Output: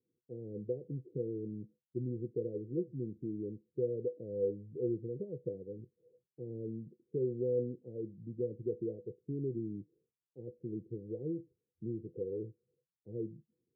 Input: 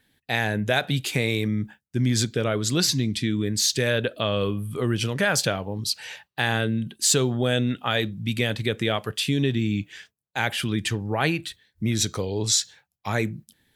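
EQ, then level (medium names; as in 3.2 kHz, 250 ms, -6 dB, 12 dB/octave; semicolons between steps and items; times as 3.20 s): rippled Chebyshev low-pass 510 Hz, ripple 9 dB; tilt EQ +4 dB/octave; bass shelf 190 Hz -10.5 dB; +3.5 dB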